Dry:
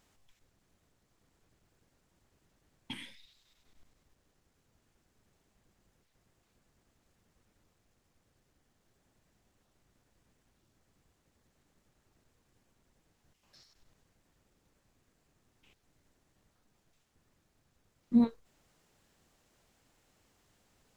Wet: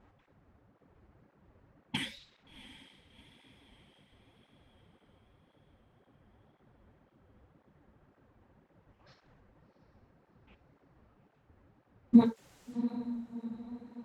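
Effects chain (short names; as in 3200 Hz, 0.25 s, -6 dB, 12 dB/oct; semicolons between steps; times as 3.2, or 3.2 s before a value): time stretch by phase-locked vocoder 0.67×; low-pass opened by the level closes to 1200 Hz, open at -47 dBFS; diffused feedback echo 0.712 s, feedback 51%, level -15.5 dB; reverb, pre-delay 3 ms, DRR 12 dB; maximiser +22 dB; tape flanging out of phase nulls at 1.9 Hz, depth 7.4 ms; gain -8 dB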